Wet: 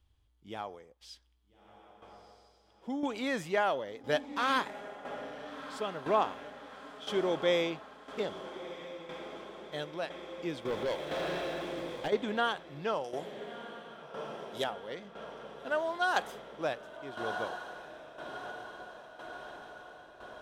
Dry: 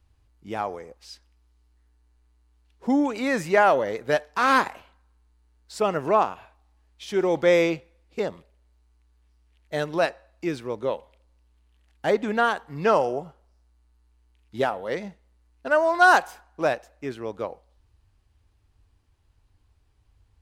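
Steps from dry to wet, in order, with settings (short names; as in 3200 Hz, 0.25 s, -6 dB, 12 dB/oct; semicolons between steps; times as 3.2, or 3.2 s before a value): 13.04–14.64 tone controls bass -5 dB, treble +14 dB; diffused feedback echo 1.341 s, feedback 66%, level -11.5 dB; tremolo saw down 0.99 Hz, depth 65%; bell 3300 Hz +13 dB 0.24 oct; 10.65–12.08 sample leveller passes 3; gain -7 dB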